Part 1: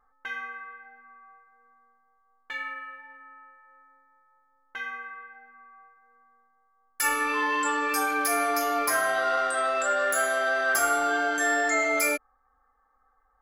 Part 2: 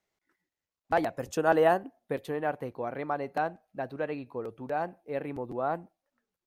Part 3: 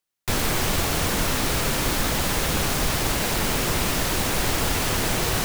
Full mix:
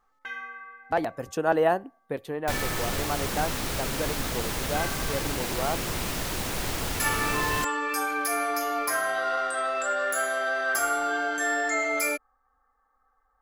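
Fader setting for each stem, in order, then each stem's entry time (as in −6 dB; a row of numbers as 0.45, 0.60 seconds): −2.0, +0.5, −7.0 decibels; 0.00, 0.00, 2.20 seconds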